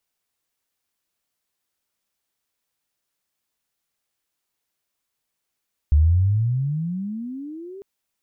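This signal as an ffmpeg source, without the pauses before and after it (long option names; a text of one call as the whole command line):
ffmpeg -f lavfi -i "aevalsrc='pow(10,(-11-24*t/1.9)/20)*sin(2*PI*71.4*1.9/(30*log(2)/12)*(exp(30*log(2)/12*t/1.9)-1))':duration=1.9:sample_rate=44100" out.wav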